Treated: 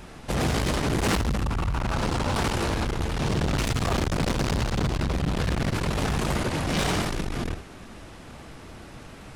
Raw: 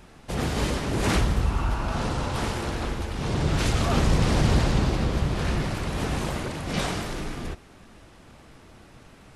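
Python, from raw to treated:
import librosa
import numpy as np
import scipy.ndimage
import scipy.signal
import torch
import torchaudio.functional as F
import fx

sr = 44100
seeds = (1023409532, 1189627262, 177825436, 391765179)

y = np.clip(x, -10.0 ** (-26.0 / 20.0), 10.0 ** (-26.0 / 20.0))
y = y + 10.0 ** (-13.0 / 20.0) * np.pad(y, (int(71 * sr / 1000.0), 0))[:len(y)]
y = fx.transformer_sat(y, sr, knee_hz=94.0)
y = y * librosa.db_to_amplitude(6.5)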